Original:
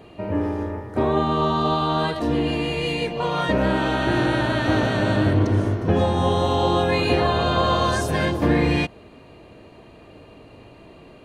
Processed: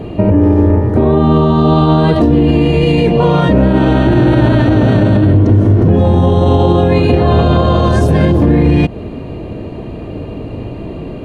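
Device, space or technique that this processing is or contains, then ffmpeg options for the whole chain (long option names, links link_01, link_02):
mastering chain: -af "equalizer=frequency=2900:width_type=o:width=1.2:gain=4,acompressor=threshold=-25dB:ratio=2,tiltshelf=frequency=720:gain=9.5,alimiter=level_in=16.5dB:limit=-1dB:release=50:level=0:latency=1,volume=-1dB"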